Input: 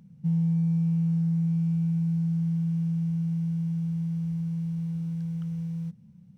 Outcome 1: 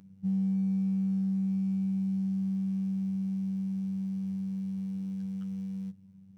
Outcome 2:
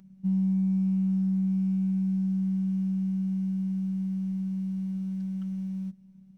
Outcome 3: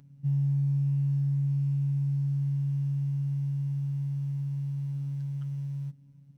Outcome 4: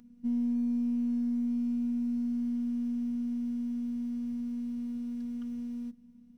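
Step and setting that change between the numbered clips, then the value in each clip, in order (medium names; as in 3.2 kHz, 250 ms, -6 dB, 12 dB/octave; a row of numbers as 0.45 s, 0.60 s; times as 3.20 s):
robot voice, frequency: 96 Hz, 190 Hz, 140 Hz, 240 Hz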